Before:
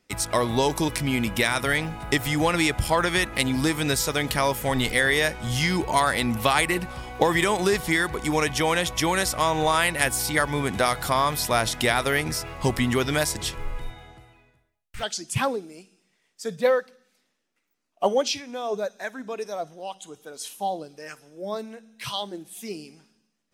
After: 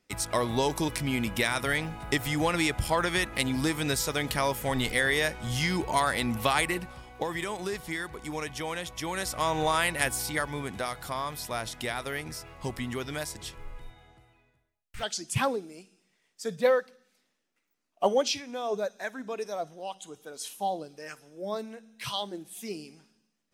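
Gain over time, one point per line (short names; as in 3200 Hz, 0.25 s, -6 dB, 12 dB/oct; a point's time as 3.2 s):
6.65 s -4.5 dB
7.09 s -11.5 dB
9 s -11.5 dB
9.5 s -4.5 dB
10.02 s -4.5 dB
10.87 s -11 dB
13.92 s -11 dB
15.18 s -2.5 dB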